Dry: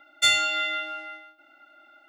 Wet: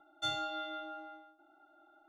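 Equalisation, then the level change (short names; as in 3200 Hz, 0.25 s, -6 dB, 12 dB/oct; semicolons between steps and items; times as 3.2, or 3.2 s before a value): running mean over 18 samples; fixed phaser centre 360 Hz, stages 8; +1.0 dB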